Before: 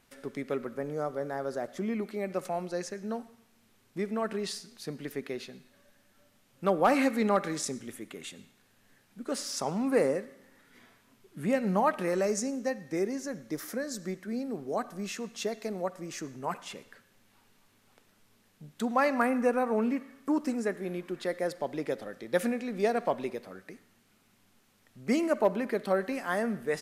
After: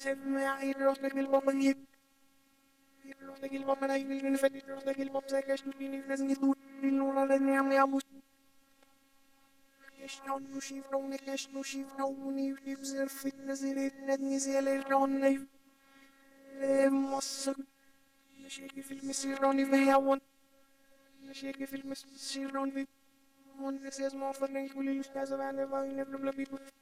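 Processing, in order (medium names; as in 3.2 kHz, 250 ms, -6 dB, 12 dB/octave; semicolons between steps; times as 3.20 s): reverse the whole clip; robot voice 273 Hz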